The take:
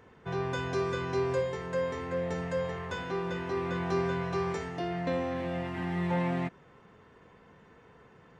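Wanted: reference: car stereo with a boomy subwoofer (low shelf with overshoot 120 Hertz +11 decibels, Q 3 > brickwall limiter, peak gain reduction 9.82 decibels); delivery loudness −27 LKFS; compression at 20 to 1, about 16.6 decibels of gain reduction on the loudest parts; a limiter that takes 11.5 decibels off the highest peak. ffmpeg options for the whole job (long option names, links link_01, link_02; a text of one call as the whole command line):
ffmpeg -i in.wav -af "acompressor=threshold=-42dB:ratio=20,alimiter=level_in=20.5dB:limit=-24dB:level=0:latency=1,volume=-20.5dB,lowshelf=frequency=120:width_type=q:width=3:gain=11,volume=27dB,alimiter=limit=-18.5dB:level=0:latency=1" out.wav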